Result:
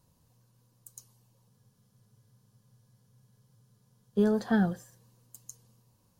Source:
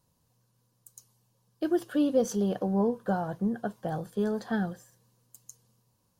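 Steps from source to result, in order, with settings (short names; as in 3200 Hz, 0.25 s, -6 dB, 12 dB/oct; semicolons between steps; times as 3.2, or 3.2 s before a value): low shelf 230 Hz +4.5 dB; spectral freeze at 1.51, 2.65 s; gain +2 dB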